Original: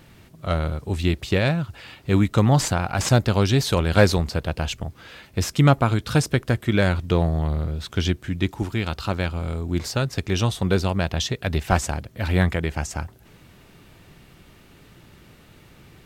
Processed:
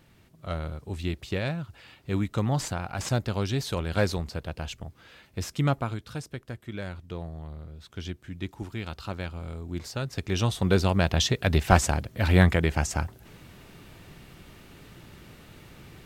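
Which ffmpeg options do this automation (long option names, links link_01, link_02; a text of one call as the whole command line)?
ffmpeg -i in.wav -af "volume=8.5dB,afade=type=out:start_time=5.73:duration=0.42:silence=0.421697,afade=type=in:start_time=7.69:duration=1.14:silence=0.446684,afade=type=in:start_time=9.93:duration=1.26:silence=0.298538" out.wav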